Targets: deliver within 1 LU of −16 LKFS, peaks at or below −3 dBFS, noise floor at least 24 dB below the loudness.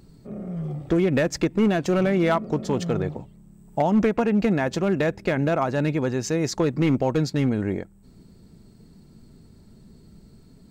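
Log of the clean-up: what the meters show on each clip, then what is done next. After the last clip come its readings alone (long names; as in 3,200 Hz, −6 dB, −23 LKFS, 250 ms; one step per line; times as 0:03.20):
share of clipped samples 0.7%; peaks flattened at −13.5 dBFS; integrated loudness −23.5 LKFS; sample peak −13.5 dBFS; target loudness −16.0 LKFS
→ clipped peaks rebuilt −13.5 dBFS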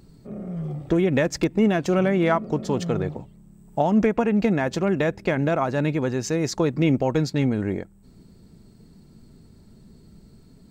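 share of clipped samples 0.0%; integrated loudness −23.0 LKFS; sample peak −7.5 dBFS; target loudness −16.0 LKFS
→ level +7 dB
brickwall limiter −3 dBFS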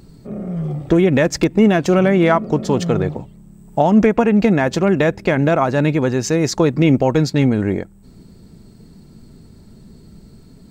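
integrated loudness −16.5 LKFS; sample peak −3.0 dBFS; background noise floor −45 dBFS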